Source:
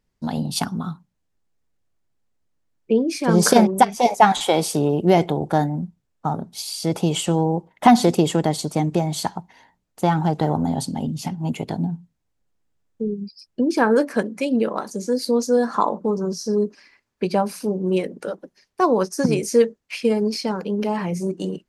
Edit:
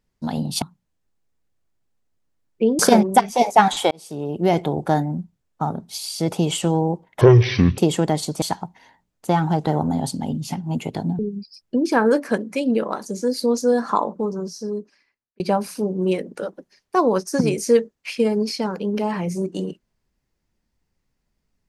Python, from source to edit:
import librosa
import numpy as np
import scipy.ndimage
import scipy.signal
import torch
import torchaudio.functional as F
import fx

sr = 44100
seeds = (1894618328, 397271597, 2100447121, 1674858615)

y = fx.edit(x, sr, fx.cut(start_s=0.62, length_s=0.29),
    fx.cut(start_s=3.08, length_s=0.35),
    fx.fade_in_span(start_s=4.55, length_s=0.8),
    fx.speed_span(start_s=7.85, length_s=0.29, speed=0.51),
    fx.cut(start_s=8.78, length_s=0.38),
    fx.cut(start_s=11.93, length_s=1.11),
    fx.fade_out_span(start_s=15.75, length_s=1.5), tone=tone)